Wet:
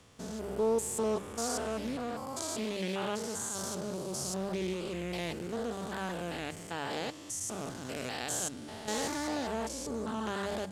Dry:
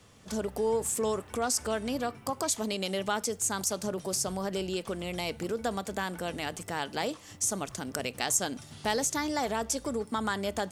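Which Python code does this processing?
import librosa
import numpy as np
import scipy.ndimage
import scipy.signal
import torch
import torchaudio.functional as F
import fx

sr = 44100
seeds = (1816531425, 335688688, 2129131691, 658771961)

y = fx.spec_steps(x, sr, hold_ms=200)
y = fx.hum_notches(y, sr, base_hz=50, count=4)
y = fx.doppler_dist(y, sr, depth_ms=0.25)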